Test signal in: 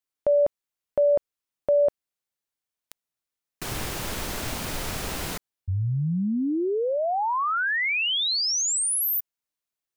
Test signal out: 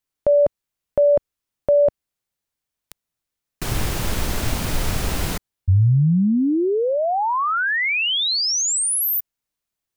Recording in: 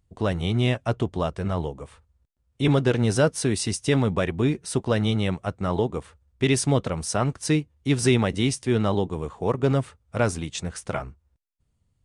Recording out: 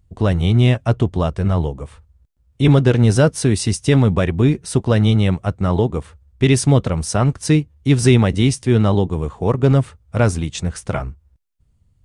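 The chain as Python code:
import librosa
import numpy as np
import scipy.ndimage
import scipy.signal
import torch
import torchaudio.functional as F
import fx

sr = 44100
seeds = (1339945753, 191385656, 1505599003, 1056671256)

y = fx.low_shelf(x, sr, hz=170.0, db=9.5)
y = y * librosa.db_to_amplitude(4.0)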